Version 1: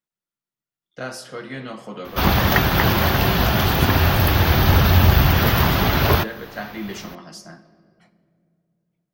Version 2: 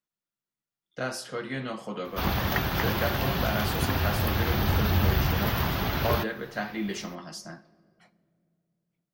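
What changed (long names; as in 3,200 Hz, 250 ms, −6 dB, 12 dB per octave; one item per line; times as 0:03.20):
speech: send −7.0 dB
background −10.0 dB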